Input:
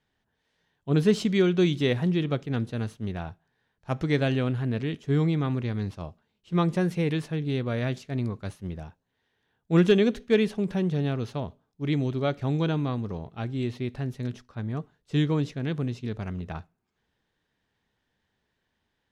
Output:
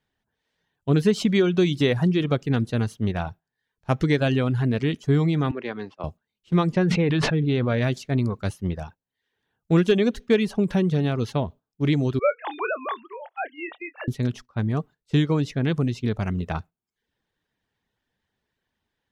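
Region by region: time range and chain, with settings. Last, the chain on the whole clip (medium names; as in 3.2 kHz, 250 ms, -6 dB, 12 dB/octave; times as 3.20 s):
5.51–6.04 s: band-pass 360–2800 Hz + three bands expanded up and down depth 40%
6.72–7.82 s: low-pass 4.2 kHz + decay stretcher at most 23 dB/s
12.19–14.08 s: formants replaced by sine waves + high-pass 580 Hz 24 dB/octave + doubling 27 ms -10 dB
whole clip: compression 2.5:1, threshold -26 dBFS; gate -47 dBFS, range -10 dB; reverb removal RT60 0.52 s; trim +8.5 dB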